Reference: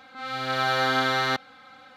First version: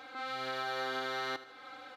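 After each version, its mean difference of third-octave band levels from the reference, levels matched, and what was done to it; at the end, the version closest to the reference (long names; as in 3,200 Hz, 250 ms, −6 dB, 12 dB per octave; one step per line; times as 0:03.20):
5.0 dB: low shelf with overshoot 260 Hz −6 dB, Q 3
downward compressor 3 to 1, threshold −38 dBFS, peak gain reduction 14 dB
on a send: repeating echo 79 ms, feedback 50%, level −15.5 dB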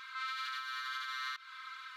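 14.0 dB: downward compressor, threshold −31 dBFS, peak gain reduction 12 dB
brickwall limiter −31.5 dBFS, peak gain reduction 11.5 dB
linear-phase brick-wall high-pass 980 Hz
level +3.5 dB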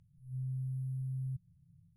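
23.5 dB: brick-wall band-stop 180–9,600 Hz
downward compressor, threshold −44 dBFS, peak gain reduction 6 dB
high-frequency loss of the air 120 metres
level +8.5 dB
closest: first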